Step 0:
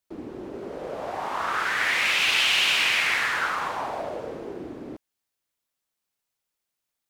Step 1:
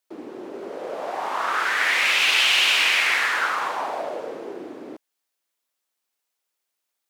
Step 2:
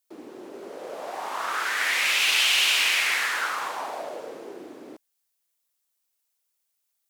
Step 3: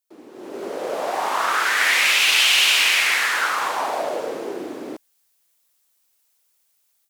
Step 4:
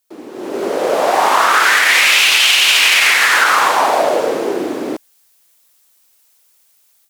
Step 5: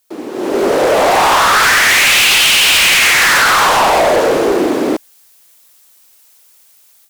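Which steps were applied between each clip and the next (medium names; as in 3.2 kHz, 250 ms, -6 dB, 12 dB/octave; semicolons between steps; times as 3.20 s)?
high-pass 310 Hz 12 dB/octave; trim +3 dB
treble shelf 5 kHz +11 dB; trim -5.5 dB
level rider gain up to 14 dB; trim -3.5 dB
loudness maximiser +12 dB; trim -1 dB
overload inside the chain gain 15.5 dB; trim +7.5 dB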